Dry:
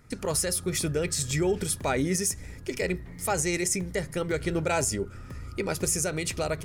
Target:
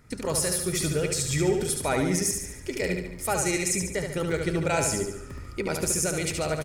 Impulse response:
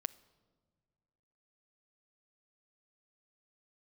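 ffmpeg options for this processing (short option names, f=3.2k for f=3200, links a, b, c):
-af "aecho=1:1:72|144|216|288|360|432:0.562|0.287|0.146|0.0746|0.038|0.0194"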